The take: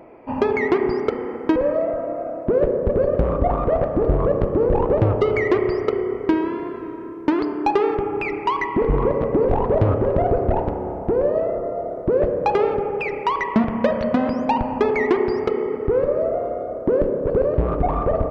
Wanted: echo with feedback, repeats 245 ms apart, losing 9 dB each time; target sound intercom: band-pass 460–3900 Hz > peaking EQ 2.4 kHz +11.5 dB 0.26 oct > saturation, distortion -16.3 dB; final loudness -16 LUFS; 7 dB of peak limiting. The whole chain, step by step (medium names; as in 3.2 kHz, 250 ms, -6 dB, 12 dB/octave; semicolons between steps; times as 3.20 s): peak limiter -12 dBFS; band-pass 460–3900 Hz; peaking EQ 2.4 kHz +11.5 dB 0.26 oct; feedback delay 245 ms, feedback 35%, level -9 dB; saturation -17.5 dBFS; trim +10 dB